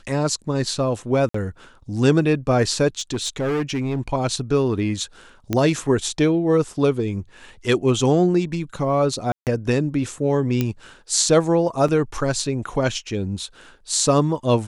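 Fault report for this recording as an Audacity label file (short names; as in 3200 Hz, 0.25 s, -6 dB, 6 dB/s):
1.290000	1.340000	gap 54 ms
2.990000	4.000000	clipped -19 dBFS
5.530000	5.530000	pop -8 dBFS
9.320000	9.470000	gap 0.148 s
10.610000	10.610000	pop -8 dBFS
11.880000	11.880000	gap 4.1 ms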